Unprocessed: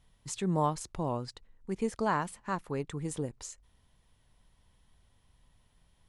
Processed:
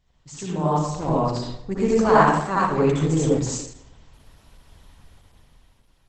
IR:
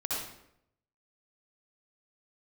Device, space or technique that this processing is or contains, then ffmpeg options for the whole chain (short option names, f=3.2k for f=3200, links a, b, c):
speakerphone in a meeting room: -filter_complex "[0:a]asplit=3[a][b][c];[a]afade=t=out:st=0.98:d=0.02[d];[b]lowshelf=f=61:g=4.5,afade=t=in:st=0.98:d=0.02,afade=t=out:st=2.25:d=0.02[e];[c]afade=t=in:st=2.25:d=0.02[f];[d][e][f]amix=inputs=3:normalize=0[g];[1:a]atrim=start_sample=2205[h];[g][h]afir=irnorm=-1:irlink=0,dynaudnorm=f=310:g=7:m=12dB" -ar 48000 -c:a libopus -b:a 12k